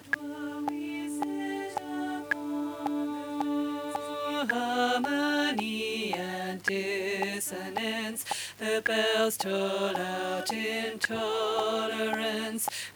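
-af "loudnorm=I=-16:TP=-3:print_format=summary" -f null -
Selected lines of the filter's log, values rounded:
Input Integrated:    -30.6 LUFS
Input True Peak:     -12.4 dBTP
Input LRA:             3.5 LU
Input Threshold:     -40.6 LUFS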